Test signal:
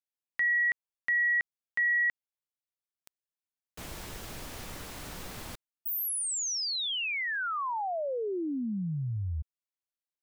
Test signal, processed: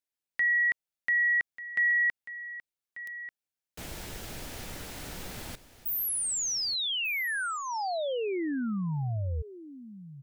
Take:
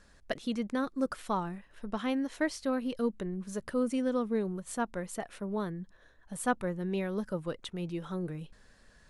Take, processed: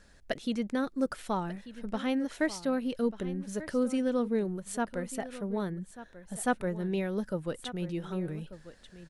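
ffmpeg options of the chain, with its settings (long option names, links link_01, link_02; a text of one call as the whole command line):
ffmpeg -i in.wav -filter_complex "[0:a]equalizer=frequency=1100:width_type=o:width=0.35:gain=-6,asplit=2[link_01][link_02];[link_02]aecho=0:1:1190:0.178[link_03];[link_01][link_03]amix=inputs=2:normalize=0,volume=1.5dB" out.wav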